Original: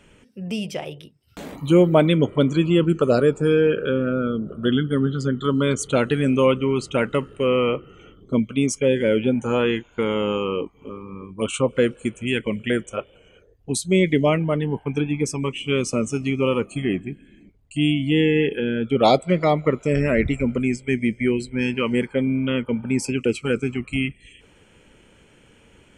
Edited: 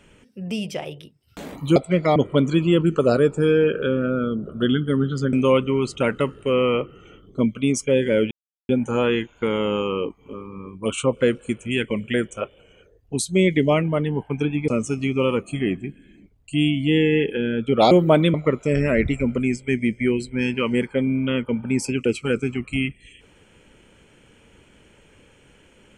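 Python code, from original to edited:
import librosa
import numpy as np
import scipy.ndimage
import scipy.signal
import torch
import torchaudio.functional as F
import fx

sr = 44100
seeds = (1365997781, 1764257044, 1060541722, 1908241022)

y = fx.edit(x, sr, fx.swap(start_s=1.76, length_s=0.43, other_s=19.14, other_length_s=0.4),
    fx.cut(start_s=5.36, length_s=0.91),
    fx.insert_silence(at_s=9.25, length_s=0.38),
    fx.cut(start_s=15.24, length_s=0.67), tone=tone)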